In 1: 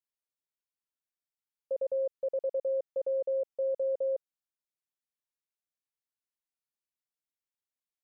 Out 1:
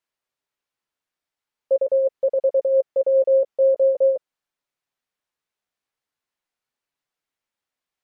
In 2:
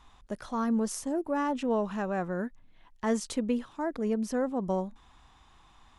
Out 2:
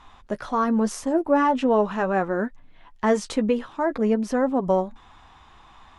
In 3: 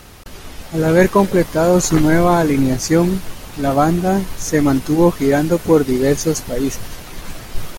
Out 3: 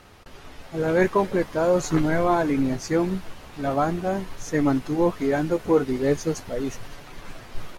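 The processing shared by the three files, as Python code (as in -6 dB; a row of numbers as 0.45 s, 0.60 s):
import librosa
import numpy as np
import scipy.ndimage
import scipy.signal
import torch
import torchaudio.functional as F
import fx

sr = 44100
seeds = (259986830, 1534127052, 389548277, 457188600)

y = fx.lowpass(x, sr, hz=2400.0, slope=6)
y = fx.low_shelf(y, sr, hz=380.0, db=-6.0)
y = fx.chorus_voices(y, sr, voices=2, hz=0.43, base_ms=11, depth_ms=4.1, mix_pct=25)
y = y * 10.0 ** (-24 / 20.0) / np.sqrt(np.mean(np.square(y)))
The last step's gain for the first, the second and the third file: +16.0 dB, +13.5 dB, -3.0 dB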